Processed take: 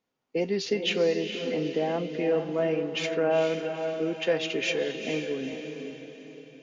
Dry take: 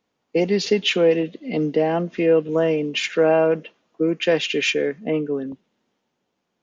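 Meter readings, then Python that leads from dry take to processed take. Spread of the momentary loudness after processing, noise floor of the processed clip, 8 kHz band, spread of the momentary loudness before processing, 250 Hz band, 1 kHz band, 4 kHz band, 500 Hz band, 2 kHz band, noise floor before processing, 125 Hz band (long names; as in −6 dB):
13 LU, −65 dBFS, can't be measured, 8 LU, −8.0 dB, −6.5 dB, −6.5 dB, −7.0 dB, −6.5 dB, −76 dBFS, −7.5 dB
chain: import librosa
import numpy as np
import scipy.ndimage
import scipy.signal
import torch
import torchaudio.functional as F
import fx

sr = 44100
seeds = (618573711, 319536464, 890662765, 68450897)

y = fx.comb_fb(x, sr, f0_hz=130.0, decay_s=0.18, harmonics='all', damping=0.0, mix_pct=60)
y = fx.echo_diffused(y, sr, ms=457, feedback_pct=45, wet_db=-6.5)
y = y * librosa.db_to_amplitude(-3.0)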